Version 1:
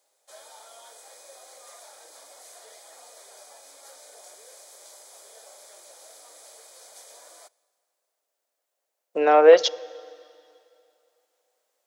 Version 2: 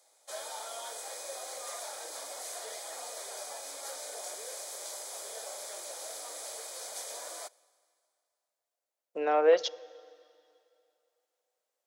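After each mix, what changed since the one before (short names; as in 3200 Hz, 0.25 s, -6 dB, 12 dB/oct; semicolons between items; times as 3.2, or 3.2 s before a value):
speech -10.0 dB; background +7.0 dB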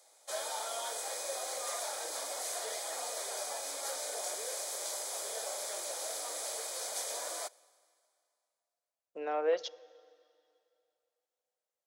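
speech -7.5 dB; background +3.0 dB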